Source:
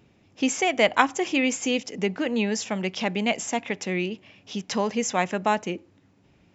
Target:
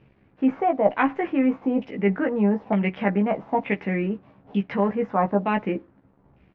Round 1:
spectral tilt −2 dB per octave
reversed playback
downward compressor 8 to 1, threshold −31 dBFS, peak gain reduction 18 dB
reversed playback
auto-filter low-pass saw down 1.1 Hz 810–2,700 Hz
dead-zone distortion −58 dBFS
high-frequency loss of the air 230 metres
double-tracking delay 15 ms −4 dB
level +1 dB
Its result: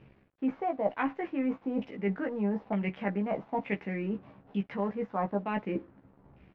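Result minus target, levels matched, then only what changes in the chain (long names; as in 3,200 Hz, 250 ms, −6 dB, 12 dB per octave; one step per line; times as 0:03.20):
downward compressor: peak gain reduction +9.5 dB
change: downward compressor 8 to 1, threshold −20 dBFS, peak gain reduction 8 dB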